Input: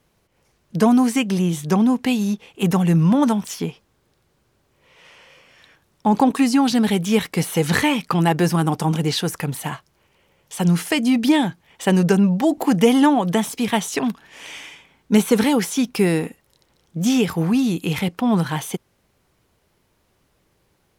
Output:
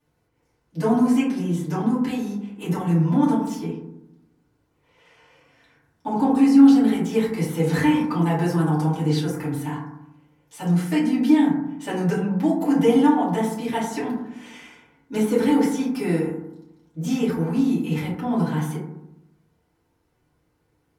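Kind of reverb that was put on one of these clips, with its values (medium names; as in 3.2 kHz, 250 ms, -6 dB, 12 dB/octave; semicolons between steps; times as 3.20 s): FDN reverb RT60 0.84 s, low-frequency decay 1.35×, high-frequency decay 0.3×, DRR -10 dB; trim -16 dB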